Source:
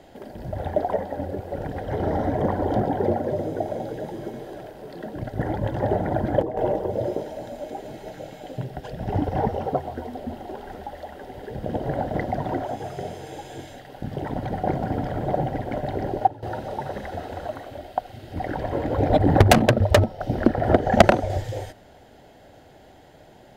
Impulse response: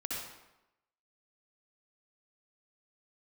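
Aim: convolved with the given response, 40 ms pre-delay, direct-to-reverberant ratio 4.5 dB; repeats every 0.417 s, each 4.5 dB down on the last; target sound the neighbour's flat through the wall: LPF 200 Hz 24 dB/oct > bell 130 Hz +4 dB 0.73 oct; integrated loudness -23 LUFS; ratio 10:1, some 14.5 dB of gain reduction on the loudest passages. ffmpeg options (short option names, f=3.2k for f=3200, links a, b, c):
-filter_complex "[0:a]acompressor=threshold=-24dB:ratio=10,aecho=1:1:417|834|1251|1668|2085|2502|2919|3336|3753:0.596|0.357|0.214|0.129|0.0772|0.0463|0.0278|0.0167|0.01,asplit=2[a][b];[1:a]atrim=start_sample=2205,adelay=40[c];[b][c]afir=irnorm=-1:irlink=0,volume=-7dB[d];[a][d]amix=inputs=2:normalize=0,lowpass=f=200:w=0.5412,lowpass=f=200:w=1.3066,equalizer=f=130:t=o:w=0.73:g=4,volume=9.5dB"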